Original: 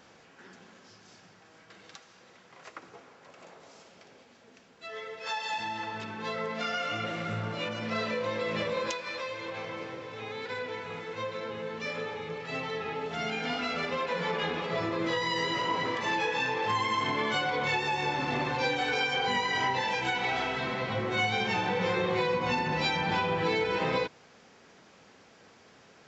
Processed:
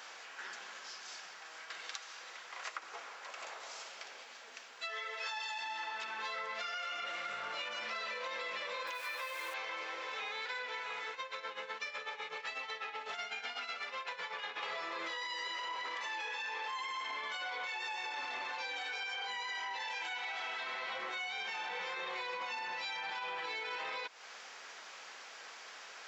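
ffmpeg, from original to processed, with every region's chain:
-filter_complex "[0:a]asettb=1/sr,asplit=3[s0][s1][s2];[s0]atrim=end=8.874[s3];[s1]atrim=start=8.87:end=9.54,asetpts=PTS-STARTPTS,afade=t=in:d=0.004:c=qsin,afade=t=out:st=0.666:d=0.004:c=qsin,acrusher=bits=8:dc=4:mix=0:aa=0.000001,acrossover=split=3000[s4][s5];[s5]acompressor=threshold=0.00398:ratio=4:attack=1:release=60[s6];[s4][s6]amix=inputs=2:normalize=0[s7];[s2]atrim=start=9.536[s8];[s3][s7]acrossfade=d=0.004:c1=hsin:c2=qsin[s9];[s9][s8]acrossfade=d=0.004:c1=qsin:c2=hsin,asettb=1/sr,asplit=3[s10][s11][s12];[s10]atrim=end=11.114[s13];[s11]atrim=start=11.11:end=14.63,asetpts=PTS-STARTPTS,afade=t=in:d=0.004:c=qsin,afade=t=out:st=3.516:d=0.004:c=qsin,tremolo=f=8:d=0.84,acompressor=threshold=0.0141:ratio=6:attack=3.2:release=140:knee=1:detection=peak[s14];[s12]atrim=start=14.626[s15];[s13][s14]acrossfade=d=0.004:c1=hsin:c2=qsin[s16];[s16][s15]acrossfade=d=0.004:c1=qsin:c2=hsin,highpass=960,alimiter=level_in=1.88:limit=0.0631:level=0:latency=1:release=38,volume=0.531,acompressor=threshold=0.00398:ratio=6,volume=2.99"

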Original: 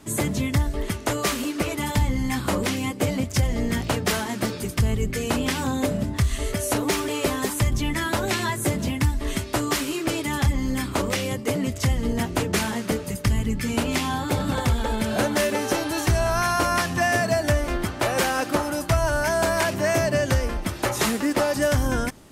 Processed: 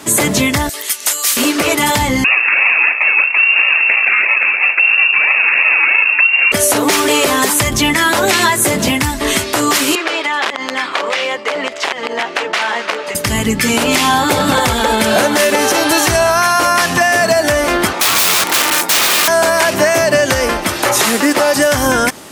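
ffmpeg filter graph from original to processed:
-filter_complex "[0:a]asettb=1/sr,asplit=3[s0][s1][s2];[s0]atrim=end=0.694[s3];[s1]atrim=start=0.69:end=1.37,asetpts=PTS-STARTPTS,afade=t=in:d=0.004:c=qsin,afade=t=out:st=0.676:d=0.004:c=qsin,aderivative,acompressor=mode=upward:threshold=0.0178:ratio=2.5:attack=3.2:release=140:knee=2.83:detection=peak[s4];[s2]atrim=start=1.366[s5];[s3][s4]acrossfade=d=0.004:c1=hsin:c2=qsin[s6];[s6][s5]acrossfade=d=0.004:c1=qsin:c2=hsin,asettb=1/sr,asplit=3[s7][s8][s9];[s7]atrim=end=2.244[s10];[s8]atrim=start=2.24:end=6.52,asetpts=PTS-STARTPTS,afade=t=in:d=0.004:c=qsin,afade=t=out:st=4.276:d=0.004:c=qsin,acrusher=samples=28:mix=1:aa=0.000001:lfo=1:lforange=16.8:lforate=3,asplit=2[s11][s12];[s12]adelay=36,volume=0.282[s13];[s11][s13]amix=inputs=2:normalize=0,atrim=end_sample=188748,lowpass=f=2400:t=q:w=0.5098,lowpass=f=2400:t=q:w=0.6013,lowpass=f=2400:t=q:w=0.9,lowpass=f=2400:t=q:w=2.563,afreqshift=-2800[s14];[s9]atrim=start=6.516[s15];[s10][s14]acrossfade=d=0.004:c1=hsin:c2=qsin[s16];[s16][s15]acrossfade=d=0.004:c1=qsin:c2=hsin,asettb=1/sr,asplit=3[s17][s18][s19];[s17]atrim=end=9.954[s20];[s18]atrim=start=9.95:end=13.15,asetpts=PTS-STARTPTS,afade=t=in:d=0.004:c=qsin,afade=t=out:st=3.196:d=0.004:c=qsin,aeval=exprs='(mod(5.62*val(0)+1,2)-1)/5.62':c=same,highpass=580,lowpass=3200,acompressor=threshold=0.0316:ratio=6:attack=3.2:release=140:knee=1:detection=peak[s21];[s19]atrim=start=13.146[s22];[s20][s21]acrossfade=d=0.004:c1=hsin:c2=qsin[s23];[s23][s22]acrossfade=d=0.004:c1=qsin:c2=hsin,asettb=1/sr,asplit=3[s24][s25][s26];[s24]atrim=end=17.934[s27];[s25]atrim=start=17.93:end=19.28,asetpts=PTS-STARTPTS,afade=t=in:d=0.004:c=qsin,afade=t=out:st=1.346:d=0.004:c=qsin,aeval=exprs='val(0)*sin(2*PI*610*n/s)':c=same,lowshelf=f=110:t=q:w=1.5:g=-12,aeval=exprs='(mod(16.8*val(0)+1,2)-1)/16.8':c=same[s28];[s26]atrim=start=19.276[s29];[s27][s28]acrossfade=d=0.004:c1=hsin:c2=qsin[s30];[s30][s29]acrossfade=d=0.004:c1=qsin:c2=hsin,highpass=f=530:p=1,acompressor=threshold=0.0501:ratio=6,alimiter=level_in=10:limit=0.891:release=50:level=0:latency=1,volume=0.891"

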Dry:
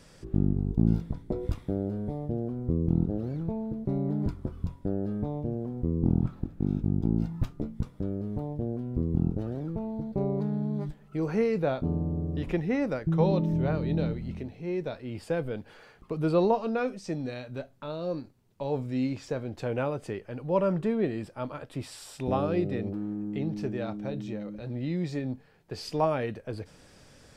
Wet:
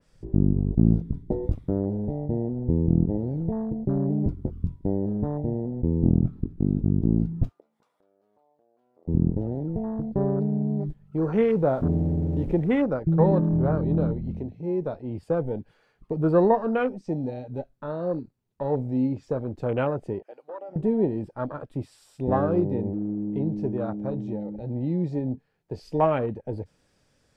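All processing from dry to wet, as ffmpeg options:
-filter_complex "[0:a]asettb=1/sr,asplit=3[s0][s1][s2];[s0]atrim=end=7.494[s3];[s1]atrim=start=7.49:end=9.08,asetpts=PTS-STARTPTS,afade=t=in:d=0.004:c=qsin,afade=t=out:st=1.586:d=0.004:c=qsin,highpass=f=720:t=q:w=1.7,acompressor=threshold=0.002:ratio=3:attack=3.2:release=140:knee=1:detection=peak[s4];[s2]atrim=start=9.076[s5];[s3][s4]acrossfade=d=0.004:c1=hsin:c2=qsin[s6];[s6][s5]acrossfade=d=0.004:c1=qsin:c2=hsin,asettb=1/sr,asplit=3[s7][s8][s9];[s7]atrim=end=11.504[s10];[s8]atrim=start=11.5:end=12.85,asetpts=PTS-STARTPTS,afade=t=in:d=0.004:c=qsin,afade=t=out:st=1.346:d=0.004:c=qsin,aeval=exprs='val(0)+0.5*0.0119*sgn(val(0))':c=same,highshelf=f=5700:g=-3.5[s11];[s9]atrim=start=12.846[s12];[s10][s11]acrossfade=d=0.004:c1=hsin:c2=qsin[s13];[s13][s12]acrossfade=d=0.004:c1=qsin:c2=hsin,asettb=1/sr,asplit=3[s14][s15][s16];[s14]atrim=end=20.234[s17];[s15]atrim=start=20.23:end=20.76,asetpts=PTS-STARTPTS,afade=t=in:d=0.004:c=qsin,afade=t=out:st=0.526:d=0.004:c=qsin,highpass=650,acompressor=threshold=0.0126:ratio=6:attack=3.2:release=140:knee=1:detection=peak[s18];[s16]atrim=start=20.756[s19];[s17][s18]acrossfade=d=0.004:c1=hsin:c2=qsin[s20];[s20][s19]acrossfade=d=0.004:c1=qsin:c2=hsin,afwtdn=0.0126,adynamicequalizer=threshold=0.00316:dfrequency=2900:dqfactor=0.7:tfrequency=2900:tqfactor=0.7:attack=5:release=100:ratio=0.375:range=2:mode=cutabove:tftype=highshelf,volume=1.68"

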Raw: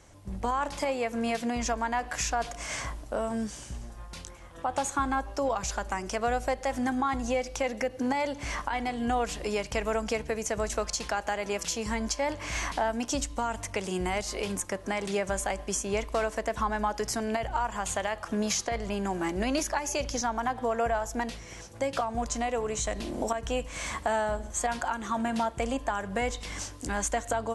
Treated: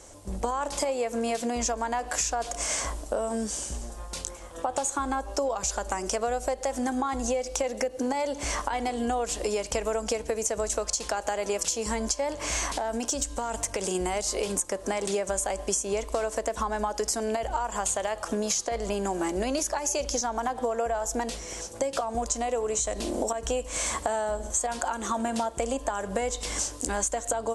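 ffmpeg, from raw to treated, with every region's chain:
-filter_complex "[0:a]asettb=1/sr,asplit=3[s0][s1][s2];[s0]atrim=end=12.664[s3];[s1]atrim=start=12.66:end=13.95,asetpts=PTS-STARTPTS,afade=t=in:d=0.004:c=qsin,afade=t=out:st=1.286:d=0.004:c=qsin,acompressor=threshold=0.0355:ratio=12:attack=3.2:release=140:knee=1:detection=peak,aeval=exprs='clip(val(0),-1,0.0447)':c=same,aeval=exprs='val(0)+0.000891*sin(2*PI*1600*n/s)':c=same[s4];[s2]atrim=start=13.946[s5];[s3][s4]acrossfade=d=0.004:c1=hsin:c2=qsin[s6];[s6][s5]acrossfade=d=0.004:c1=qsin:c2=hsin,equalizer=f=125:t=o:w=1:g=-10,equalizer=f=500:t=o:w=1:g=5,equalizer=f=2000:t=o:w=1:g=-4,equalizer=f=8000:t=o:w=1:g=9,acompressor=threshold=0.0316:ratio=6,volume=1.78"

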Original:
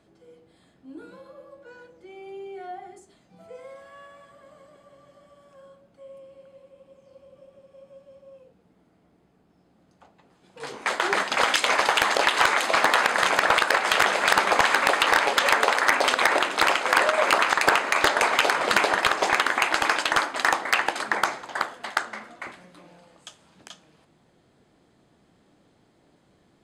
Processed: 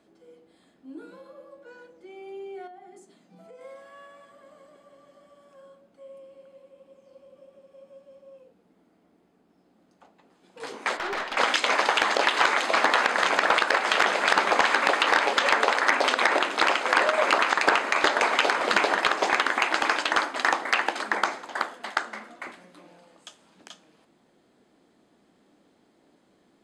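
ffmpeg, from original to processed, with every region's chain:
-filter_complex "[0:a]asettb=1/sr,asplit=3[s0][s1][s2];[s0]atrim=end=2.674[s3];[s1]atrim=start=2.67:end=3.61,asetpts=PTS-STARTPTS,afade=t=in:d=0.004:c=qsin,afade=t=out:st=0.936:d=0.004:c=qsin,highpass=f=160:t=q:w=1.8,acompressor=threshold=0.00631:ratio=4:attack=3.2:release=140:knee=1:detection=peak[s4];[s2]atrim=start=3.606[s5];[s3][s4]acrossfade=d=0.004:c1=hsin:c2=qsin[s6];[s6][s5]acrossfade=d=0.004:c1=qsin:c2=hsin,asettb=1/sr,asplit=3[s7][s8][s9];[s7]atrim=end=10.974[s10];[s8]atrim=start=10.97:end=11.37,asetpts=PTS-STARTPTS,afade=t=in:d=0.004:c=qsin,afade=t=out:st=0.396:d=0.004:c=qsin,highpass=300,lowpass=4000,aeval=exprs='(tanh(15.8*val(0)+0.35)-tanh(0.35))/15.8':c=same[s11];[s9]atrim=start=11.366[s12];[s10][s11]acrossfade=d=0.004:c1=hsin:c2=qsin[s13];[s13][s12]acrossfade=d=0.004:c1=qsin:c2=hsin,acrossover=split=7600[s14][s15];[s15]acompressor=threshold=0.00316:ratio=4:attack=1:release=60[s16];[s14][s16]amix=inputs=2:normalize=0,lowshelf=f=170:t=q:w=1.5:g=-8.5,volume=0.841"

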